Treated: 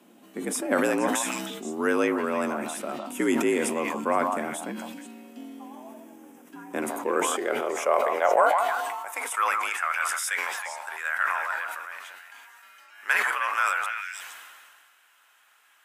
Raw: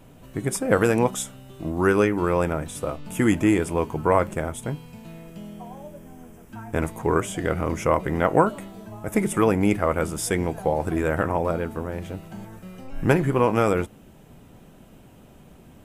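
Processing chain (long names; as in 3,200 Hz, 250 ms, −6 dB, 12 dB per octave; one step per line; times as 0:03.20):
tilt shelving filter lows −4 dB, about 700 Hz
echo through a band-pass that steps 157 ms, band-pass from 840 Hz, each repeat 1.4 octaves, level −4 dB
high-pass filter sweep 180 Hz → 1,400 Hz, 0:06.63–0:09.81
frequency shifter +64 Hz
level that may fall only so fast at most 29 dB per second
level −6.5 dB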